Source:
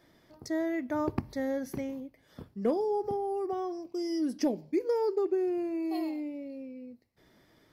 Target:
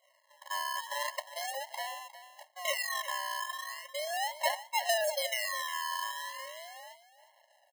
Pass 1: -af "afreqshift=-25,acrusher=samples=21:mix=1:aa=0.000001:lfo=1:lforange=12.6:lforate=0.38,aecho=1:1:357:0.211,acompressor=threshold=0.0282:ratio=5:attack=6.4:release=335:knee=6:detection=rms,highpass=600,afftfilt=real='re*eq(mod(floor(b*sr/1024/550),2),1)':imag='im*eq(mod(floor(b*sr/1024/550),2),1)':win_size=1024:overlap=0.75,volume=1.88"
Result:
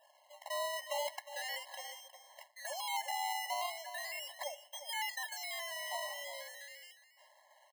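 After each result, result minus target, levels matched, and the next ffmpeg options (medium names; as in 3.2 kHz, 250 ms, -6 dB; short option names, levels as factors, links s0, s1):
compression: peak gain reduction +9.5 dB; decimation with a swept rate: distortion -14 dB
-af "afreqshift=-25,acrusher=samples=21:mix=1:aa=0.000001:lfo=1:lforange=12.6:lforate=0.38,highpass=600,aecho=1:1:357:0.211,afftfilt=real='re*eq(mod(floor(b*sr/1024/550),2),1)':imag='im*eq(mod(floor(b*sr/1024/550),2),1)':win_size=1024:overlap=0.75,volume=1.88"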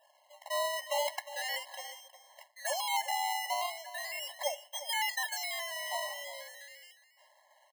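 decimation with a swept rate: distortion -14 dB
-af "afreqshift=-25,acrusher=samples=50:mix=1:aa=0.000001:lfo=1:lforange=30:lforate=0.38,highpass=600,aecho=1:1:357:0.211,afftfilt=real='re*eq(mod(floor(b*sr/1024/550),2),1)':imag='im*eq(mod(floor(b*sr/1024/550),2),1)':win_size=1024:overlap=0.75,volume=1.88"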